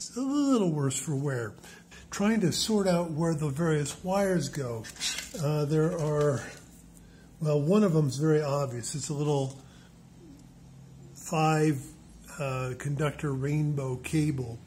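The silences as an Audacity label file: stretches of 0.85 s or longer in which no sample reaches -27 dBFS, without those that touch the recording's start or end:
6.400000	7.420000	silence
9.460000	11.320000	silence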